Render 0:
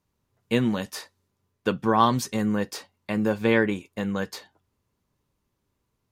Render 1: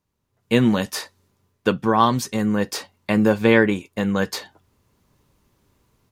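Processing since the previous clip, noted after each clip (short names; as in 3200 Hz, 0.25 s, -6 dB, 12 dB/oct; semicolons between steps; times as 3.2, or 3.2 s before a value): AGC gain up to 14 dB; gain -1 dB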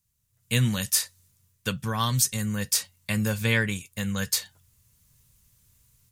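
EQ curve 130 Hz 0 dB, 340 Hz -21 dB, 510 Hz -14 dB, 800 Hz -17 dB, 1700 Hz -6 dB, 4700 Hz +1 dB, 8200 Hz +10 dB; gain +1 dB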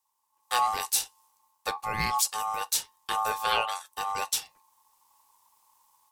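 ring modulator 980 Hz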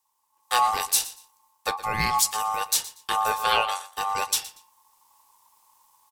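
feedback echo 0.118 s, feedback 23%, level -17 dB; gain +4 dB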